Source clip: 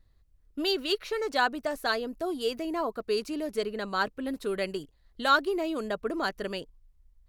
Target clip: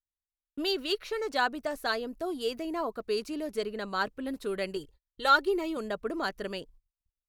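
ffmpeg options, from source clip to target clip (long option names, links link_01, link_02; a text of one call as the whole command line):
ffmpeg -i in.wav -filter_complex "[0:a]agate=range=-37dB:threshold=-52dB:ratio=16:detection=peak,asettb=1/sr,asplit=3[link_01][link_02][link_03];[link_01]atrim=end=4.764[link_04];[link_02]atrim=start=4.76:end=5.77,asetpts=PTS-STARTPTS,afade=type=in:duration=0.004:curve=qsin,afade=type=out:start_time=1.006:duration=0.004:curve=qsin,aecho=1:1:2.2:0.67,atrim=end_sample=44541[link_05];[link_03]atrim=start=5.766[link_06];[link_04][link_05]acrossfade=duration=0.004:curve1=hsin:curve2=qsin[link_07];[link_07][link_06]acrossfade=duration=0.004:curve1=qsin:curve2=hsin,volume=-2dB" out.wav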